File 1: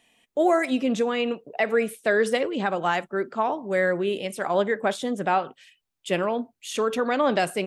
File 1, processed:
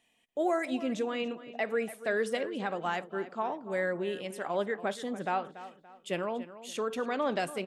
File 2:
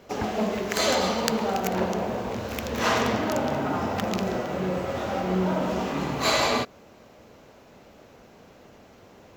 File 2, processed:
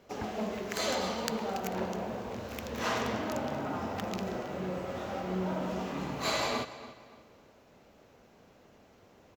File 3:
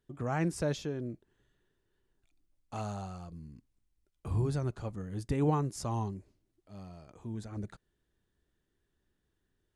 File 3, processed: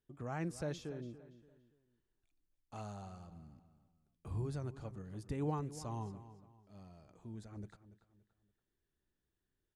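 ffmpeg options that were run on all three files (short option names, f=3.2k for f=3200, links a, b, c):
-filter_complex "[0:a]asplit=2[a][b];[b]adelay=286,lowpass=f=4.7k:p=1,volume=-14.5dB,asplit=2[c][d];[d]adelay=286,lowpass=f=4.7k:p=1,volume=0.36,asplit=2[e][f];[f]adelay=286,lowpass=f=4.7k:p=1,volume=0.36[g];[a][c][e][g]amix=inputs=4:normalize=0,volume=-8.5dB"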